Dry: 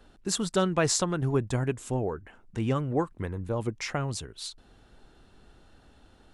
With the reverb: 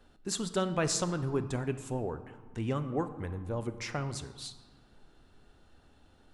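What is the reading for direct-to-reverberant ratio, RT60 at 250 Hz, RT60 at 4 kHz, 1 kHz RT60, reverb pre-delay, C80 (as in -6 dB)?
10.0 dB, 1.9 s, 0.90 s, 1.6 s, 3 ms, 13.5 dB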